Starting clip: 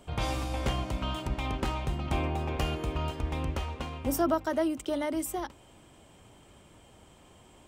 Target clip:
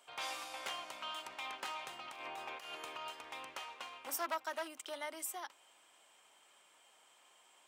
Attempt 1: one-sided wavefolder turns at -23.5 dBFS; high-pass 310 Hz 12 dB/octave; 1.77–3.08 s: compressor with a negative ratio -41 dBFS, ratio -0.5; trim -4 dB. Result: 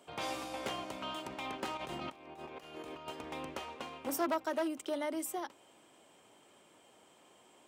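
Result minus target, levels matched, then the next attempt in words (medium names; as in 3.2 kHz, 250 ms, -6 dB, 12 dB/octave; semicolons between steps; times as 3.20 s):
250 Hz band +13.0 dB
one-sided wavefolder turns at -23.5 dBFS; high-pass 980 Hz 12 dB/octave; 1.77–3.08 s: compressor with a negative ratio -41 dBFS, ratio -0.5; trim -4 dB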